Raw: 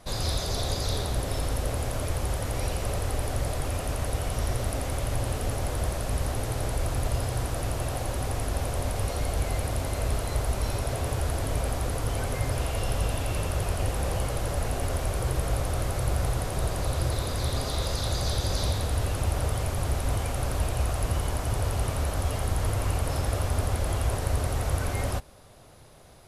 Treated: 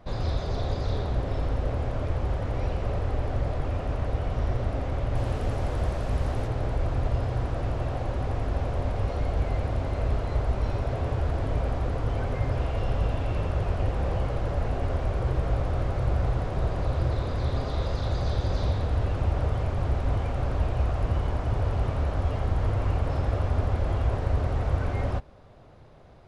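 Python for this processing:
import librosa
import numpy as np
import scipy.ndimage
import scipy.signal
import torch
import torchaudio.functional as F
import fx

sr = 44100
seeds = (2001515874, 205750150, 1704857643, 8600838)

y = fx.spacing_loss(x, sr, db_at_10k=fx.steps((0.0, 31.0), (5.14, 20.0), (6.46, 28.0)))
y = y * librosa.db_to_amplitude(2.0)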